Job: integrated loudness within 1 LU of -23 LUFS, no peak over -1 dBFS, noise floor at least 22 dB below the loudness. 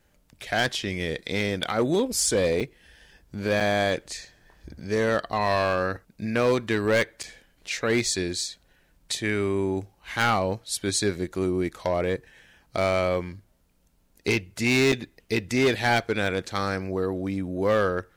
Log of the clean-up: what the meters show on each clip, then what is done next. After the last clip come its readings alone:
clipped 0.8%; flat tops at -16.0 dBFS; dropouts 4; longest dropout 6.5 ms; loudness -25.5 LUFS; peak -16.0 dBFS; loudness target -23.0 LUFS
-> clip repair -16 dBFS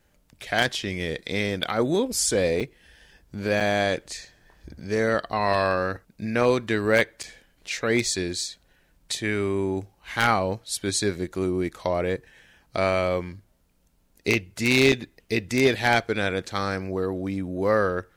clipped 0.0%; dropouts 4; longest dropout 6.5 ms
-> interpolate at 2.6/3.6/7.23/14.92, 6.5 ms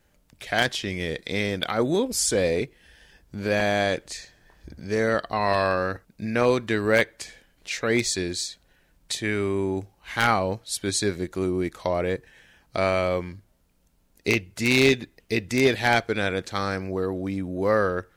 dropouts 0; loudness -25.0 LUFS; peak -7.0 dBFS; loudness target -23.0 LUFS
-> gain +2 dB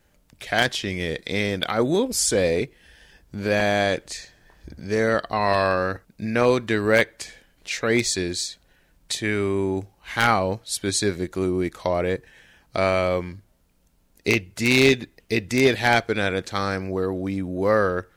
loudness -23.0 LUFS; peak -5.0 dBFS; noise floor -62 dBFS

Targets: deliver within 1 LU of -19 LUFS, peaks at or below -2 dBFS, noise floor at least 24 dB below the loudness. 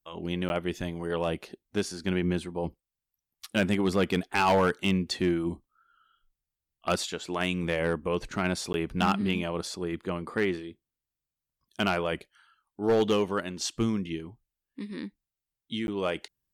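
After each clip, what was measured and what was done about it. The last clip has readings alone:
clipped 0.4%; flat tops at -17.5 dBFS; dropouts 3; longest dropout 11 ms; loudness -29.5 LUFS; peak -17.5 dBFS; loudness target -19.0 LUFS
-> clip repair -17.5 dBFS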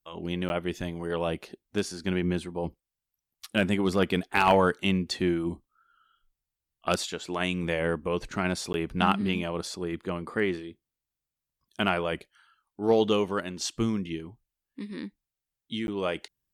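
clipped 0.0%; dropouts 3; longest dropout 11 ms
-> interpolate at 0.49/8.73/15.87, 11 ms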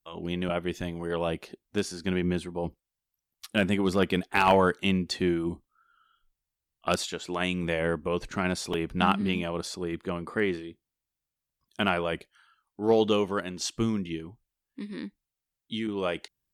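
dropouts 0; loudness -29.0 LUFS; peak -8.5 dBFS; loudness target -19.0 LUFS
-> gain +10 dB; limiter -2 dBFS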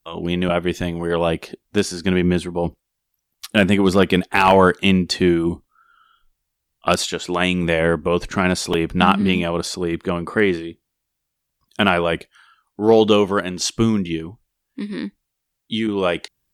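loudness -19.5 LUFS; peak -2.0 dBFS; noise floor -78 dBFS

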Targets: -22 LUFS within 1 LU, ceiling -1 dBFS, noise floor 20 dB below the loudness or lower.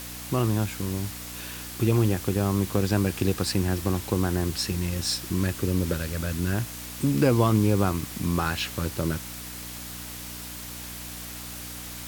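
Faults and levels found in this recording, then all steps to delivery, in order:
hum 60 Hz; harmonics up to 300 Hz; hum level -40 dBFS; noise floor -38 dBFS; noise floor target -47 dBFS; loudness -27.0 LUFS; peak -8.5 dBFS; loudness target -22.0 LUFS
-> de-hum 60 Hz, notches 5; denoiser 9 dB, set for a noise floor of -38 dBFS; gain +5 dB

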